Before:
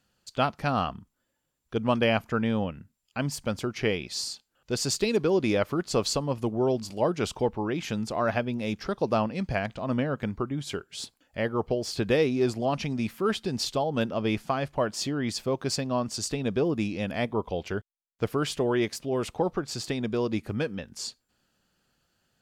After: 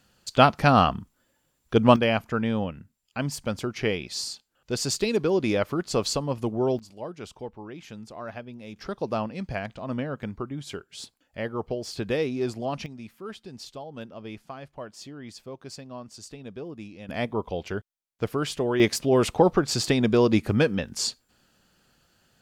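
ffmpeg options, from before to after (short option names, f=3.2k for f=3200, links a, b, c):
-af "asetnsamples=n=441:p=0,asendcmd='1.96 volume volume 0.5dB;6.79 volume volume -11dB;8.76 volume volume -3dB;12.86 volume volume -12dB;17.09 volume volume 0dB;18.8 volume volume 8dB',volume=8.5dB"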